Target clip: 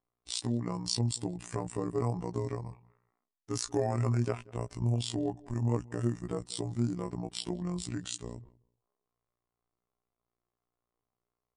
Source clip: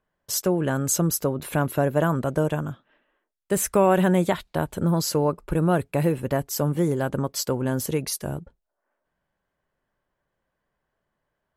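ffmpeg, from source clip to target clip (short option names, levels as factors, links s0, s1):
-filter_complex "[0:a]afftfilt=real='hypot(re,im)*cos(PI*b)':imag='0':win_size=2048:overlap=0.75,asplit=2[s0][s1];[s1]adelay=185,lowpass=f=2300:p=1,volume=0.0794,asplit=2[s2][s3];[s3]adelay=185,lowpass=f=2300:p=1,volume=0.18[s4];[s0][s2][s4]amix=inputs=3:normalize=0,asetrate=30296,aresample=44100,atempo=1.45565,volume=0.473"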